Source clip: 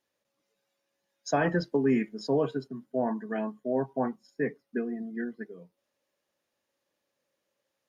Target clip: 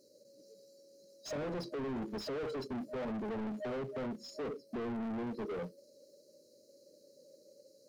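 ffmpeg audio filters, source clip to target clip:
-filter_complex "[0:a]afftfilt=real='re*(1-between(b*sr/4096,620,3900))':imag='im*(1-between(b*sr/4096,620,3900))':win_size=4096:overlap=0.75,acompressor=threshold=-37dB:ratio=5,asplit=2[a][b];[b]acrusher=bits=3:mode=log:mix=0:aa=0.000001,volume=-10dB[c];[a][c]amix=inputs=2:normalize=0,asplit=2[d][e];[e]highpass=f=720:p=1,volume=35dB,asoftclip=type=tanh:threshold=-26dB[f];[d][f]amix=inputs=2:normalize=0,lowpass=f=1.6k:p=1,volume=-6dB,asoftclip=type=tanh:threshold=-31dB,volume=-3dB"

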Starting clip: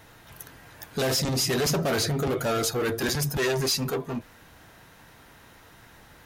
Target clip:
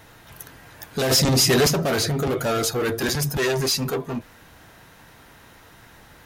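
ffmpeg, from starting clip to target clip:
-filter_complex "[0:a]asplit=3[a][b][c];[a]afade=t=out:st=1.1:d=0.02[d];[b]acontrast=23,afade=t=in:st=1.1:d=0.02,afade=t=out:st=1.67:d=0.02[e];[c]afade=t=in:st=1.67:d=0.02[f];[d][e][f]amix=inputs=3:normalize=0,volume=3dB"

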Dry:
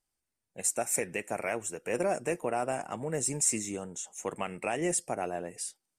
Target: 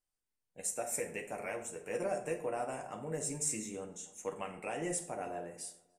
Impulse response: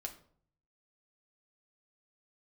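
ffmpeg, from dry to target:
-filter_complex "[0:a]asplit=2[a][b];[b]adelay=293,lowpass=f=1.6k:p=1,volume=-23dB,asplit=2[c][d];[d]adelay=293,lowpass=f=1.6k:p=1,volume=0.37[e];[a][c][e]amix=inputs=3:normalize=0[f];[1:a]atrim=start_sample=2205,afade=t=out:st=0.19:d=0.01,atrim=end_sample=8820,asetrate=30870,aresample=44100[g];[f][g]afir=irnorm=-1:irlink=0,volume=-6.5dB"

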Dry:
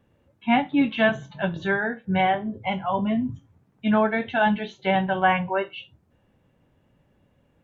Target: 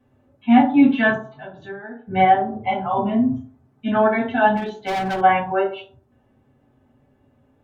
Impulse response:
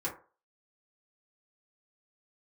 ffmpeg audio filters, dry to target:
-filter_complex "[0:a]asplit=3[a][b][c];[a]afade=t=out:st=1.14:d=0.02[d];[b]acompressor=threshold=-39dB:ratio=4,afade=t=in:st=1.14:d=0.02,afade=t=out:st=2.05:d=0.02[e];[c]afade=t=in:st=2.05:d=0.02[f];[d][e][f]amix=inputs=3:normalize=0[g];[1:a]atrim=start_sample=2205,asetrate=33957,aresample=44100[h];[g][h]afir=irnorm=-1:irlink=0,asettb=1/sr,asplit=3[i][j][k];[i]atrim=end=4.574[l];[j]atrim=start=4.57:end=5.21,asetpts=PTS-STARTPTS,afade=t=in:d=0.004:c=qsin,afade=t=out:st=0.636:d=0.004:c=qsin,asoftclip=type=hard:threshold=-18dB[m];[k]atrim=start=5.206[n];[l][m]acrossfade=d=0.004:c1=hsin:c2=qsin[o];[o][n]acrossfade=d=0.004:c1=qsin:c2=hsin,volume=-3dB"

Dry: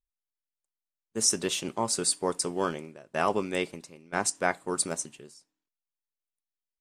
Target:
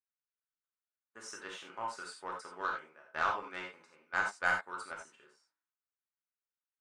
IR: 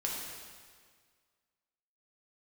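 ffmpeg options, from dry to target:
-filter_complex "[0:a]asplit=2[a][b];[b]acompressor=threshold=-39dB:ratio=6,volume=-1dB[c];[a][c]amix=inputs=2:normalize=0,bandpass=f=1.4k:t=q:w=2.8:csg=0,aeval=exprs='0.178*(cos(1*acos(clip(val(0)/0.178,-1,1)))-cos(1*PI/2))+0.0158*(cos(2*acos(clip(val(0)/0.178,-1,1)))-cos(2*PI/2))+0.01*(cos(7*acos(clip(val(0)/0.178,-1,1)))-cos(7*PI/2))':c=same[d];[1:a]atrim=start_sample=2205,atrim=end_sample=4410[e];[d][e]afir=irnorm=-1:irlink=0"

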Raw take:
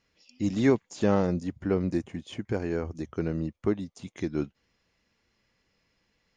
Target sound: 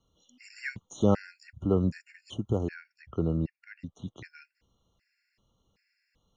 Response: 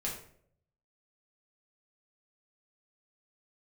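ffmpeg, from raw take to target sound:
-filter_complex "[0:a]asettb=1/sr,asplit=3[a][b][c];[a]atrim=end=2.744[d];[b]atrim=start=2.74:end=4.25,asetpts=PTS-STARTPTS,afade=t=in:d=0.004:c=qsin,afade=t=out:st=1.506:d=0.004:c=qsin,lowpass=3.9k[e];[c]atrim=start=4.246[f];[d][e]acrossfade=d=0.004:c1=hsin:c2=qsin[g];[g][f]acrossfade=d=0.004:c1=qsin:c2=hsin,acrossover=split=150|2100[h][i][j];[h]acontrast=56[k];[k][i][j]amix=inputs=3:normalize=0,afftfilt=real='re*gt(sin(2*PI*1.3*pts/sr)*(1-2*mod(floor(b*sr/1024/1400),2)),0)':imag='im*gt(sin(2*PI*1.3*pts/sr)*(1-2*mod(floor(b*sr/1024/1400),2)),0)':win_size=1024:overlap=0.75"

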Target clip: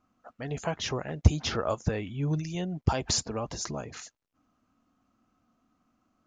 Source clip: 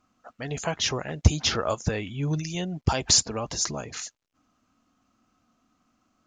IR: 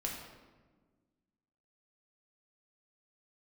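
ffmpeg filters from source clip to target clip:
-af "highshelf=f=2.2k:g=-8.5,volume=-1.5dB"

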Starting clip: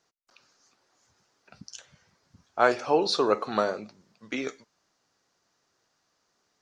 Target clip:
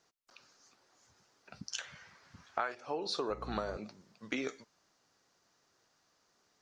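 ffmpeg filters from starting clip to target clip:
-filter_complex "[0:a]asettb=1/sr,asplit=3[a][b][c];[a]atrim=end=1.724[d];[b]atrim=start=1.72:end=2.75,asetpts=PTS-STARTPTS,afade=t=in:d=0.004:c=qsin,afade=t=out:st=1.026:d=0.004:c=qsin,equalizer=f=1.8k:w=0.53:g=12[e];[c]atrim=start=2.746[f];[d][e]acrossfade=d=0.004:c1=hsin:c2=qsin[g];[g][f]acrossfade=d=0.004:c1=qsin:c2=hsin,asettb=1/sr,asplit=3[h][i][j];[h]atrim=end=3.304[k];[i]atrim=start=3.3:end=3.77,asetpts=PTS-STARTPTS,afade=t=in:d=0.004:c=qsin,afade=t=out:st=0.466:d=0.004:c=qsin,aeval=exprs='val(0)+0.0158*(sin(2*PI*60*n/s)+sin(2*PI*2*60*n/s)/2+sin(2*PI*3*60*n/s)/3+sin(2*PI*4*60*n/s)/4+sin(2*PI*5*60*n/s)/5)':c=same[l];[j]atrim=start=3.766[m];[k][l]acrossfade=d=0.004:c1=hsin:c2=qsin[n];[n][m]acrossfade=d=0.004:c1=qsin:c2=hsin,acompressor=threshold=-32dB:ratio=16"

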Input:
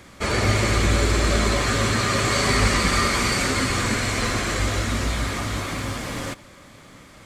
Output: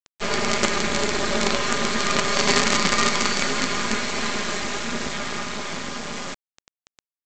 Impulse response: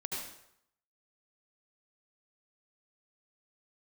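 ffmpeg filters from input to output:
-af "highpass=160,aecho=1:1:4.9:0.81,aresample=16000,acrusher=bits=3:dc=4:mix=0:aa=0.000001,aresample=44100,volume=1dB"

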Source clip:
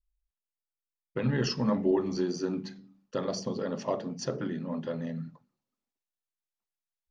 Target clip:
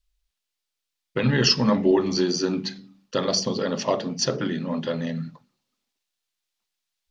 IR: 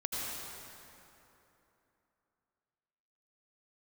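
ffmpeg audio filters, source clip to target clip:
-af "equalizer=f=3.9k:w=0.64:g=10,volume=6.5dB"

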